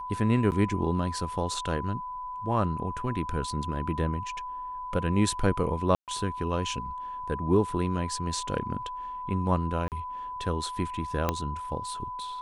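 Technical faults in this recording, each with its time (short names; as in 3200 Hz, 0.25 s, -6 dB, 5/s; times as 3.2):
tone 1000 Hz -34 dBFS
0.51–0.52 gap 9.3 ms
5.95–6.08 gap 0.128 s
9.88–9.92 gap 38 ms
11.29 pop -11 dBFS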